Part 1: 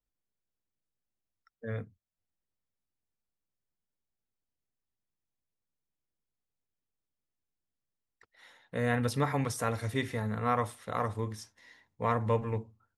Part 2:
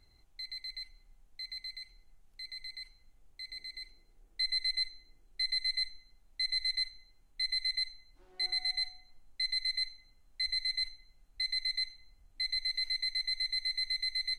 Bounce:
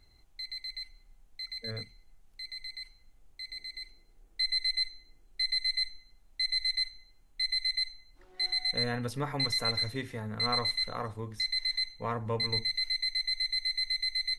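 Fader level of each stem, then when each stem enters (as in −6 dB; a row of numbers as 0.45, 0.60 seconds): −4.5, +2.5 decibels; 0.00, 0.00 seconds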